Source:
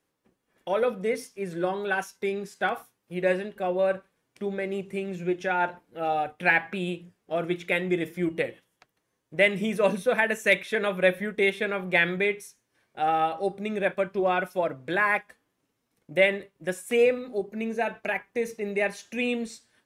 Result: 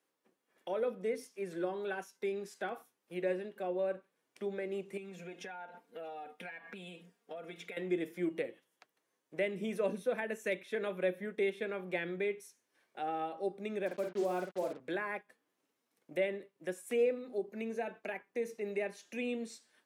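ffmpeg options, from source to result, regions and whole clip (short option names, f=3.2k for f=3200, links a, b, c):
-filter_complex "[0:a]asettb=1/sr,asplit=3[a][b][c];[a]atrim=end=4.974[d];[b]atrim=start=4.97:end=7.77,asetpts=PTS-STARTPTS,afade=t=in:d=0.004:c=qsin,afade=t=out:st=2.796:d=0.004:c=qsin,aecho=1:1:4.3:0.68,atrim=end_sample=123480,acompressor=threshold=-35dB:ratio=6:attack=3.2:release=140:knee=1:detection=peak[e];[c]atrim=start=7.766[f];[d][e]acrossfade=d=0.004:c1=hsin:c2=qsin[g];[g][f]acrossfade=d=0.004:c1=qsin:c2=hsin,asettb=1/sr,asplit=3[h][i][j];[h]atrim=end=13.864[k];[i]atrim=start=13.86:end=14.8,asetpts=PTS-STARTPTS,afade=t=in:d=0.004:c=qsin,afade=t=out:st=0.936:d=0.004:c=qsin,lowpass=f=1.4k:p=1,acrusher=bits=5:mix=0:aa=0.5,asplit=2[l][m];[m]adelay=50,volume=-5dB[n];[l][n]amix=inputs=2:normalize=0,atrim=end_sample=41454[o];[j]atrim=start=14.796[p];[k][o]acrossfade=d=0.004:c1=hsin:c2=qsin[q];[q][p]acrossfade=d=0.004:c1=qsin:c2=hsin,highpass=280,acrossover=split=460[r][s];[s]acompressor=threshold=-44dB:ratio=2[t];[r][t]amix=inputs=2:normalize=0,volume=-4dB"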